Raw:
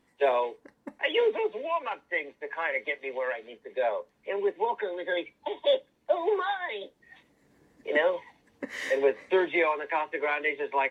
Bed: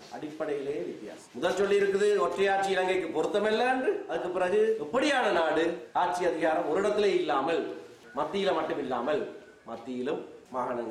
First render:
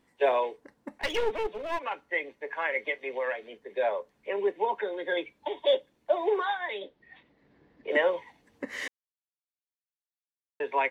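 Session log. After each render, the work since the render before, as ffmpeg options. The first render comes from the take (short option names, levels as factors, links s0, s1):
-filter_complex "[0:a]asettb=1/sr,asplit=3[s0][s1][s2];[s0]atrim=end=1.014[s3];[s1]atrim=start=1.01:end=1.84,asetpts=PTS-STARTPTS,afade=t=in:d=0.004:c=qsin,afade=t=out:st=0.826:d=0.004:c=qsin,aeval=exprs='clip(val(0),-1,0.0158)':c=same[s4];[s2]atrim=start=1.836[s5];[s3][s4]acrossfade=d=0.004:c1=hsin:c2=qsin[s6];[s6][s5]acrossfade=d=0.004:c1=qsin:c2=hsin,asettb=1/sr,asplit=3[s7][s8][s9];[s7]atrim=end=6.794[s10];[s8]atrim=start=6.79:end=7.91,asetpts=PTS-STARTPTS,afade=t=in:d=0.004:c=qsin,afade=t=out:st=1.116:d=0.004:c=qsin,lowpass=f=4200:w=0.5412,lowpass=f=4200:w=1.3066[s11];[s9]atrim=start=7.906[s12];[s10][s11]acrossfade=d=0.004:c1=hsin:c2=qsin[s13];[s13][s12]acrossfade=d=0.004:c1=qsin:c2=hsin,asplit=3[s14][s15][s16];[s14]atrim=end=8.88,asetpts=PTS-STARTPTS,afade=t=out:st=8.876:d=0.004:c=hsin[s17];[s15]atrim=start=8.88:end=10.6,asetpts=PTS-STARTPTS,volume=0[s18];[s16]atrim=start=10.6,asetpts=PTS-STARTPTS,afade=t=in:d=0.004:c=hsin[s19];[s17][s18][s19]concat=n=3:v=0:a=1"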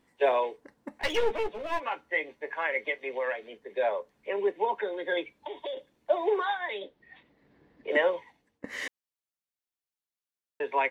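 -filter_complex "[0:a]asettb=1/sr,asplit=3[s0][s1][s2];[s0]atrim=end=0.944[s3];[s1]atrim=start=0.94:end=2.52,asetpts=PTS-STARTPTS,afade=t=in:d=0.004:c=qsin,afade=t=out:st=1.576:d=0.004:c=qsin,asplit=2[s4][s5];[s5]adelay=13,volume=0.473[s6];[s4][s6]amix=inputs=2:normalize=0,atrim=end_sample=69678[s7];[s2]atrim=start=2.516[s8];[s3][s7]acrossfade=d=0.004:c1=hsin:c2=qsin[s9];[s9][s8]acrossfade=d=0.004:c1=qsin:c2=hsin,asettb=1/sr,asplit=3[s10][s11][s12];[s10]atrim=end=5.354[s13];[s11]atrim=start=5.35:end=5.77,asetpts=PTS-STARTPTS,afade=t=in:d=0.004:c=qsin,afade=t=out:st=0.416:d=0.004:c=qsin,acompressor=threshold=0.0224:ratio=6:attack=3.2:release=140:knee=1:detection=peak[s14];[s12]atrim=start=5.766[s15];[s13][s14]acrossfade=d=0.004:c1=hsin:c2=qsin[s16];[s16][s15]acrossfade=d=0.004:c1=qsin:c2=hsin,asplit=2[s17][s18];[s17]atrim=end=8.64,asetpts=PTS-STARTPTS,afade=t=out:st=8.05:d=0.59:silence=0.0668344[s19];[s18]atrim=start=8.64,asetpts=PTS-STARTPTS,afade=t=in:d=0.004:c=hsin:silence=0.0668344[s20];[s19][s20]concat=n=2:v=0:a=1"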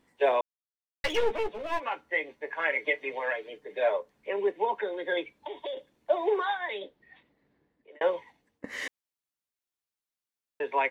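-filter_complex "[0:a]asettb=1/sr,asplit=3[s0][s1][s2];[s0]atrim=end=2.594[s3];[s1]atrim=start=2.59:end=3.97,asetpts=PTS-STARTPTS,afade=t=in:d=0.004:c=qsin,afade=t=out:st=1.376:d=0.004:c=qsin,aecho=1:1:6.6:0.85,atrim=end_sample=60858[s4];[s2]atrim=start=3.966[s5];[s3][s4]acrossfade=d=0.004:c1=hsin:c2=qsin[s6];[s6][s5]acrossfade=d=0.004:c1=qsin:c2=hsin,asplit=4[s7][s8][s9][s10];[s7]atrim=end=0.41,asetpts=PTS-STARTPTS,afade=t=out:st=0.406:d=0.004:c=hsin[s11];[s8]atrim=start=0.41:end=1.04,asetpts=PTS-STARTPTS,volume=0[s12];[s9]atrim=start=1.04:end=8.01,asetpts=PTS-STARTPTS,afade=t=in:d=0.004:c=hsin,afade=t=out:st=5.78:d=1.19[s13];[s10]atrim=start=8.01,asetpts=PTS-STARTPTS,afade=t=in:d=0.004:c=hsin[s14];[s11][s12][s13][s14]concat=n=4:v=0:a=1"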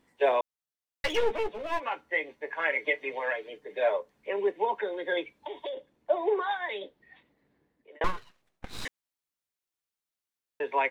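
-filter_complex "[0:a]asettb=1/sr,asplit=3[s0][s1][s2];[s0]atrim=end=5.694[s3];[s1]atrim=start=5.69:end=6.51,asetpts=PTS-STARTPTS,afade=t=in:d=0.004:c=qsin,afade=t=out:st=0.816:d=0.004:c=qsin,highshelf=f=2300:g=-7.5[s4];[s2]atrim=start=6.506[s5];[s3][s4]acrossfade=d=0.004:c1=hsin:c2=qsin[s6];[s6][s5]acrossfade=d=0.004:c1=qsin:c2=hsin,asettb=1/sr,asplit=3[s7][s8][s9];[s7]atrim=end=8.044[s10];[s8]atrim=start=8.04:end=8.85,asetpts=PTS-STARTPTS,afade=t=in:d=0.004:c=qsin,afade=t=out:st=0.806:d=0.004:c=qsin,aeval=exprs='abs(val(0))':c=same[s11];[s9]atrim=start=8.846[s12];[s10][s11]acrossfade=d=0.004:c1=hsin:c2=qsin[s13];[s13][s12]acrossfade=d=0.004:c1=qsin:c2=hsin"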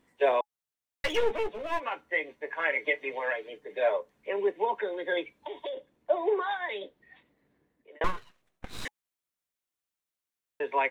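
-af "equalizer=f=4700:w=2.6:g=-3,bandreject=f=840:w=24"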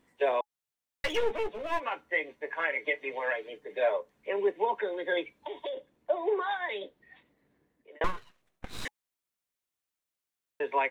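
-af "alimiter=limit=0.141:level=0:latency=1:release=435"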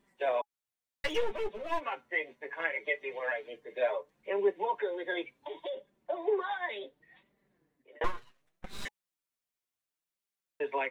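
-af "flanger=delay=5:depth=3.5:regen=0:speed=0.68:shape=sinusoidal"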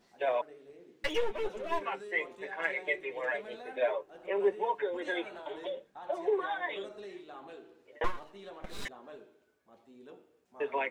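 -filter_complex "[1:a]volume=0.0944[s0];[0:a][s0]amix=inputs=2:normalize=0"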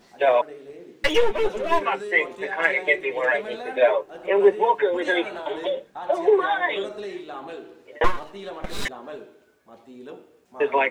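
-af "volume=3.98"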